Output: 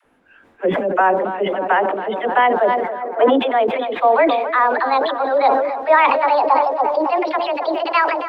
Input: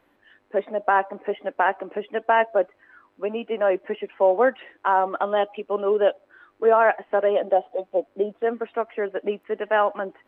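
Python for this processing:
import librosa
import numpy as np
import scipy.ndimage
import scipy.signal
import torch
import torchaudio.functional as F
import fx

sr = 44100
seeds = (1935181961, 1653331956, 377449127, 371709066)

y = fx.speed_glide(x, sr, from_pct=87, to_pct=161)
y = fx.echo_tape(y, sr, ms=278, feedback_pct=81, wet_db=-11.0, lp_hz=1300.0, drive_db=9.0, wow_cents=10)
y = fx.spec_box(y, sr, start_s=3.0, length_s=0.36, low_hz=240.0, high_hz=2600.0, gain_db=9)
y = fx.dispersion(y, sr, late='lows', ms=51.0, hz=510.0)
y = fx.sustainer(y, sr, db_per_s=43.0)
y = y * 10.0 ** (4.0 / 20.0)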